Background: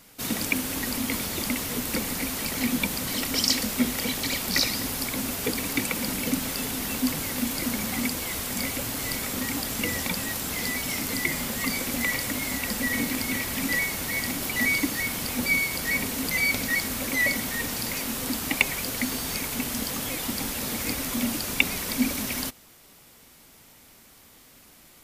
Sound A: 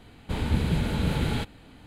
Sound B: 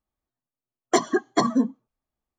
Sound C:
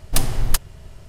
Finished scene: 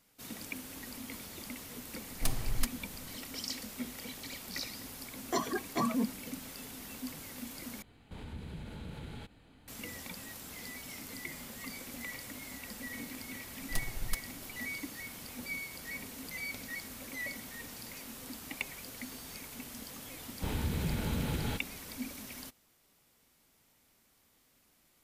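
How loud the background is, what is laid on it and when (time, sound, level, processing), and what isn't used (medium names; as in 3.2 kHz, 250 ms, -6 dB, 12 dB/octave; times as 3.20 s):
background -16 dB
2.09 s: add C -13.5 dB
4.39 s: add B -8 dB + transient shaper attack -8 dB, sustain +5 dB
7.82 s: replace with A -10 dB + compression 2:1, threshold -37 dBFS
13.59 s: add C -16 dB + partial rectifier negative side -7 dB
20.13 s: add A -6 dB + peak limiter -18.5 dBFS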